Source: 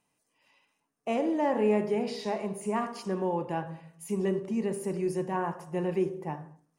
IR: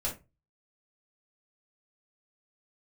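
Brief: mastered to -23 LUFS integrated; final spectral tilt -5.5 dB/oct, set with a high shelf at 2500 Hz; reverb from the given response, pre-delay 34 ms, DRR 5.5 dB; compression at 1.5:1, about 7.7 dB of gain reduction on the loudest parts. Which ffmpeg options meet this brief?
-filter_complex "[0:a]highshelf=f=2.5k:g=5,acompressor=threshold=-43dB:ratio=1.5,asplit=2[a][b];[1:a]atrim=start_sample=2205,adelay=34[c];[b][c]afir=irnorm=-1:irlink=0,volume=-10dB[d];[a][d]amix=inputs=2:normalize=0,volume=12.5dB"

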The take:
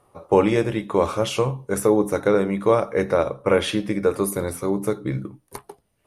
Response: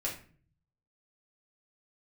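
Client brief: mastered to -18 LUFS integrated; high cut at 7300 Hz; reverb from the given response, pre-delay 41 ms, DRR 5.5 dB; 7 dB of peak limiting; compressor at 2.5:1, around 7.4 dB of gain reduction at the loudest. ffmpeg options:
-filter_complex "[0:a]lowpass=7.3k,acompressor=threshold=-23dB:ratio=2.5,alimiter=limit=-16.5dB:level=0:latency=1,asplit=2[a][b];[1:a]atrim=start_sample=2205,adelay=41[c];[b][c]afir=irnorm=-1:irlink=0,volume=-9dB[d];[a][d]amix=inputs=2:normalize=0,volume=10dB"

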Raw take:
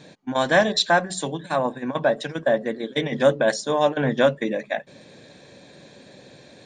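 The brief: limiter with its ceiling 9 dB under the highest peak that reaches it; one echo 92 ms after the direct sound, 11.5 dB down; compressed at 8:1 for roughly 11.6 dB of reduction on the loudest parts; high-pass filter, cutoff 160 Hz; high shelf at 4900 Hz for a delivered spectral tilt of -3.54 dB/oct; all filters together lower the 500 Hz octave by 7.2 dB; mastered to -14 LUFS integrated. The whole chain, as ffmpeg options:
-af "highpass=160,equalizer=f=500:t=o:g=-9,highshelf=f=4.9k:g=8,acompressor=threshold=-26dB:ratio=8,alimiter=limit=-24dB:level=0:latency=1,aecho=1:1:92:0.266,volume=20.5dB"

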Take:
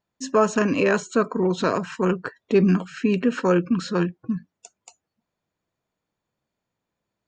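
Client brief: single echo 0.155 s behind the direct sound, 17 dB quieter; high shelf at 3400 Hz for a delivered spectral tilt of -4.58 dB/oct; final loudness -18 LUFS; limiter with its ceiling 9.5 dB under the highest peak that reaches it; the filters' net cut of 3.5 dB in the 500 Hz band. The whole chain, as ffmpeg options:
-af "equalizer=f=500:t=o:g=-5,highshelf=f=3.4k:g=8.5,alimiter=limit=-17dB:level=0:latency=1,aecho=1:1:155:0.141,volume=9dB"

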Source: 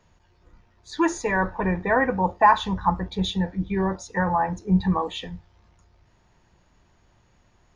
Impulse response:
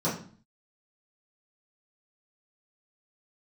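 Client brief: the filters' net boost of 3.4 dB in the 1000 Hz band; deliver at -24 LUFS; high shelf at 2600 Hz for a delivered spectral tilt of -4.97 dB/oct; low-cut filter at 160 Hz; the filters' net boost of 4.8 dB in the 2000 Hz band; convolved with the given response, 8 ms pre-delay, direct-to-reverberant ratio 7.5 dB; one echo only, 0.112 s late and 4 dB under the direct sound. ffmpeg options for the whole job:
-filter_complex "[0:a]highpass=160,equalizer=f=1k:t=o:g=3.5,equalizer=f=2k:t=o:g=8,highshelf=f=2.6k:g=-9,aecho=1:1:112:0.631,asplit=2[a][b];[1:a]atrim=start_sample=2205,adelay=8[c];[b][c]afir=irnorm=-1:irlink=0,volume=-18dB[d];[a][d]amix=inputs=2:normalize=0,volume=-5dB"

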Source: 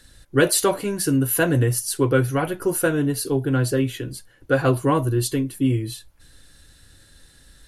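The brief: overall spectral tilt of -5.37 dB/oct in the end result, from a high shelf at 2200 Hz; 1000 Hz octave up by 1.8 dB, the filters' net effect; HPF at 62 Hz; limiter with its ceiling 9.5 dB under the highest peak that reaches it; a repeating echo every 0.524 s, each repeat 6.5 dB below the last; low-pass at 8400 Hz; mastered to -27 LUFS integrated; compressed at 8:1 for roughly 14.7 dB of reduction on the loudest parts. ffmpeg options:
-af "highpass=62,lowpass=8.4k,equalizer=f=1k:t=o:g=3.5,highshelf=f=2.2k:g=-5.5,acompressor=threshold=-28dB:ratio=8,alimiter=level_in=3dB:limit=-24dB:level=0:latency=1,volume=-3dB,aecho=1:1:524|1048|1572|2096|2620|3144:0.473|0.222|0.105|0.0491|0.0231|0.0109,volume=8.5dB"

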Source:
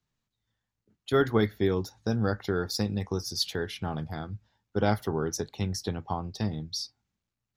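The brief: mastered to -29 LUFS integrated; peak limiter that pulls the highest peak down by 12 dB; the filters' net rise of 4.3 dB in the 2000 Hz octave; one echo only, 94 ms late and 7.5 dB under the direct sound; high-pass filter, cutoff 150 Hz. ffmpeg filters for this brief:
-af "highpass=150,equalizer=f=2k:t=o:g=6,alimiter=limit=-22dB:level=0:latency=1,aecho=1:1:94:0.422,volume=5dB"

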